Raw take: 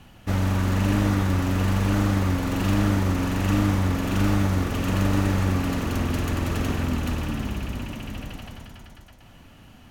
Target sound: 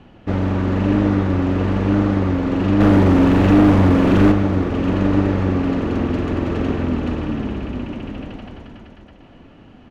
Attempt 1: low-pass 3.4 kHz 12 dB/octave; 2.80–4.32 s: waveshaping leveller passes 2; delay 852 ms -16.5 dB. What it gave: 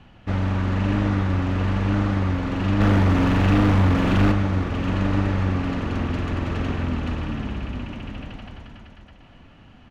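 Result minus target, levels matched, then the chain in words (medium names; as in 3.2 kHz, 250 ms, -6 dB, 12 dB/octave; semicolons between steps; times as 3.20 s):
500 Hz band -3.5 dB
low-pass 3.4 kHz 12 dB/octave; peaking EQ 370 Hz +10 dB 1.8 oct; 2.80–4.32 s: waveshaping leveller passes 2; delay 852 ms -16.5 dB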